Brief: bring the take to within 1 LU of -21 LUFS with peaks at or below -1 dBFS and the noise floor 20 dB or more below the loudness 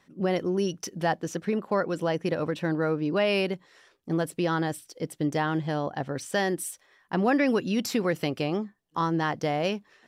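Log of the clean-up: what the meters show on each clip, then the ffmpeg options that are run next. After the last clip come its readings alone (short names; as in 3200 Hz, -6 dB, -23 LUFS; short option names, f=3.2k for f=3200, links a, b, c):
loudness -28.0 LUFS; peak -13.0 dBFS; loudness target -21.0 LUFS
-> -af "volume=7dB"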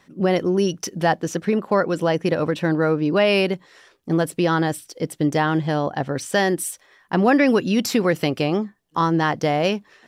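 loudness -21.0 LUFS; peak -6.0 dBFS; noise floor -58 dBFS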